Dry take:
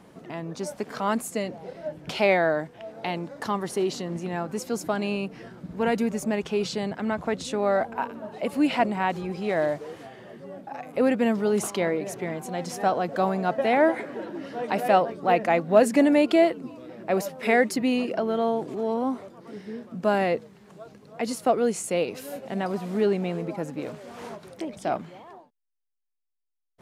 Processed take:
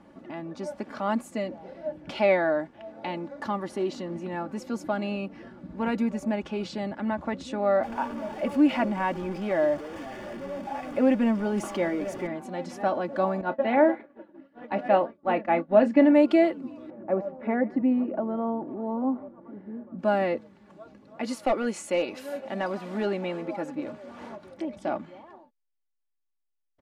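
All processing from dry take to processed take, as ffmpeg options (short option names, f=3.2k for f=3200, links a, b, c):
-filter_complex "[0:a]asettb=1/sr,asplit=3[a][b][c];[a]atrim=end=7.834[d];[b]atrim=start=7.83:end=12.27,asetpts=PTS-STARTPTS,afade=t=in:d=0.004:c=qsin,afade=t=out:st=4.436:d=0.004:c=qsin,aeval=exprs='val(0)+0.5*0.02*sgn(val(0))':c=same,bandreject=f=4k:w=9.8[e];[c]atrim=start=12.266[f];[d][e]acrossfade=d=0.004:c1=hsin:c2=qsin[g];[g][f]acrossfade=d=0.004:c1=qsin:c2=hsin,asettb=1/sr,asplit=3[h][i][j];[h]atrim=end=13.414[k];[i]atrim=start=13.41:end=16.15,asetpts=PTS-STARTPTS,afade=t=in:d=0.004:c=qsin,afade=t=out:st=2.736:d=0.004:c=qsin,lowpass=3.5k,asplit=2[l][m];[m]adelay=30,volume=-13dB[n];[l][n]amix=inputs=2:normalize=0,atrim=end_sample=120834,agate=range=-33dB:threshold=-25dB:ratio=3:release=100:detection=peak[o];[j]atrim=start=16.146[p];[k][o]acrossfade=d=0.004:c1=hsin:c2=qsin[q];[q][p]acrossfade=d=0.004:c1=qsin:c2=hsin,asettb=1/sr,asplit=3[r][s][t];[r]atrim=end=16.904[u];[s]atrim=start=16.9:end=19.99,asetpts=PTS-STARTPTS,afade=t=in:d=0.004:c=qsin,afade=t=out:st=3.086:d=0.004:c=qsin,lowpass=1.1k,aecho=1:1:144:0.0891,atrim=end_sample=136269[v];[t]atrim=start=19.986[w];[u][v]acrossfade=d=0.004:c1=hsin:c2=qsin[x];[x][w]acrossfade=d=0.004:c1=qsin:c2=hsin,asettb=1/sr,asplit=3[y][z][aa];[y]atrim=end=21.234[ab];[z]atrim=start=21.23:end=23.75,asetpts=PTS-STARTPTS,afade=t=in:d=0.004:c=qsin,afade=t=out:st=2.516:d=0.004:c=qsin,lowshelf=f=390:g=-10,acontrast=32,aeval=exprs='clip(val(0),-1,0.168)':c=same[ac];[aa]atrim=start=23.746[ad];[ab][ac]acrossfade=d=0.004:c1=hsin:c2=qsin[ae];[ae][ad]acrossfade=d=0.004:c1=qsin:c2=hsin,aemphasis=mode=reproduction:type=75kf,bandreject=f=490:w=12,aecho=1:1:3.5:0.56,volume=-2dB"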